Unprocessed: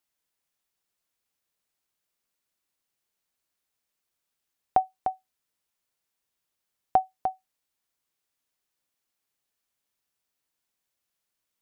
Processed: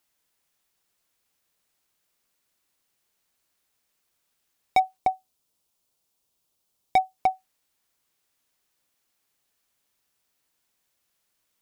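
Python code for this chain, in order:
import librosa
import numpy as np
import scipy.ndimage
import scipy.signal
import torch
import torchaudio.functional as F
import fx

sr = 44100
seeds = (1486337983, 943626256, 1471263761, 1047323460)

y = fx.peak_eq(x, sr, hz=1800.0, db=-9.5, octaves=1.1, at=(4.97, 7.18))
y = np.clip(y, -10.0 ** (-22.0 / 20.0), 10.0 ** (-22.0 / 20.0))
y = F.gain(torch.from_numpy(y), 7.5).numpy()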